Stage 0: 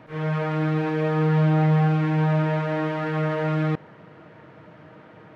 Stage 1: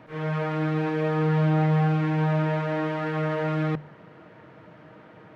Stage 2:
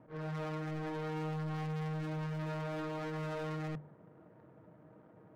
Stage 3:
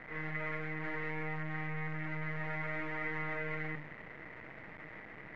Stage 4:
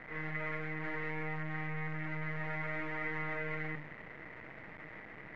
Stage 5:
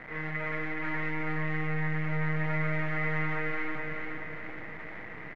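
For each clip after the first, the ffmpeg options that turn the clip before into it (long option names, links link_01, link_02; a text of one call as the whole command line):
ffmpeg -i in.wav -af "bandreject=frequency=50:width_type=h:width=6,bandreject=frequency=100:width_type=h:width=6,bandreject=frequency=150:width_type=h:width=6,volume=-1.5dB" out.wav
ffmpeg -i in.wav -af "adynamicsmooth=sensitivity=3.5:basefreq=820,asoftclip=type=hard:threshold=-28dB,volume=-8.5dB" out.wav
ffmpeg -i in.wav -af "aeval=exprs='0.0158*(cos(1*acos(clip(val(0)/0.0158,-1,1)))-cos(1*PI/2))+0.00398*(cos(5*acos(clip(val(0)/0.0158,-1,1)))-cos(5*PI/2))':channel_layout=same,acrusher=bits=6:dc=4:mix=0:aa=0.000001,lowpass=frequency=2000:width_type=q:width=10,volume=1.5dB" out.wav
ffmpeg -i in.wav -af anull out.wav
ffmpeg -i in.wav -af "aecho=1:1:424|848|1272|1696|2120|2544:0.631|0.29|0.134|0.0614|0.0283|0.013,volume=4.5dB" out.wav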